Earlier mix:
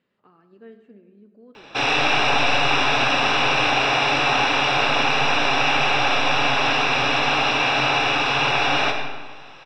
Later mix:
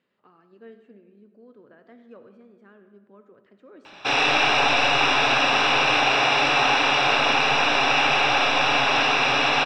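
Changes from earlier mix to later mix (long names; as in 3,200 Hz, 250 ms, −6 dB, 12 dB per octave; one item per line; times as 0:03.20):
background: entry +2.30 s
master: add low-shelf EQ 150 Hz −8.5 dB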